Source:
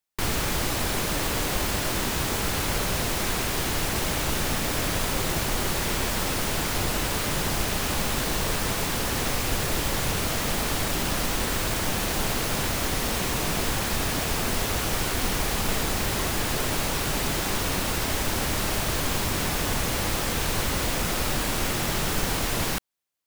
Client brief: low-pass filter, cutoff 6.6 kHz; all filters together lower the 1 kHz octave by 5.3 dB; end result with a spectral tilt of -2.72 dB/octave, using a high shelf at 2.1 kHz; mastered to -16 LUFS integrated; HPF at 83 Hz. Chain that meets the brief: high-pass 83 Hz; low-pass 6.6 kHz; peaking EQ 1 kHz -8 dB; treble shelf 2.1 kHz +4 dB; trim +11 dB

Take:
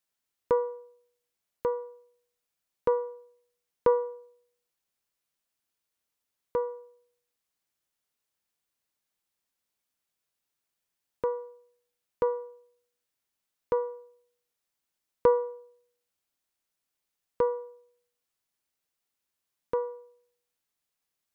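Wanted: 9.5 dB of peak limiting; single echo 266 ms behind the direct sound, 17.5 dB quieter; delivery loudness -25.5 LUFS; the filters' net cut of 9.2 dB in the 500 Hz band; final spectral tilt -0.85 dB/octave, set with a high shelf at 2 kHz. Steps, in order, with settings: peaking EQ 500 Hz -9 dB; treble shelf 2 kHz -5.5 dB; peak limiter -24.5 dBFS; delay 266 ms -17.5 dB; trim +15.5 dB

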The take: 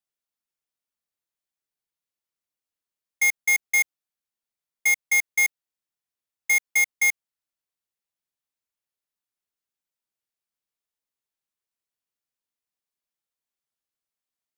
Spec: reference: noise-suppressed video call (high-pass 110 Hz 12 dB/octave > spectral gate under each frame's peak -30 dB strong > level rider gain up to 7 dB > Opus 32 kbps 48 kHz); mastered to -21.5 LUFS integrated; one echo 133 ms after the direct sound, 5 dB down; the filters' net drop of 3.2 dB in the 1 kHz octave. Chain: high-pass 110 Hz 12 dB/octave; peaking EQ 1 kHz -4 dB; delay 133 ms -5 dB; spectral gate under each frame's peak -30 dB strong; level rider gain up to 7 dB; trim -1 dB; Opus 32 kbps 48 kHz

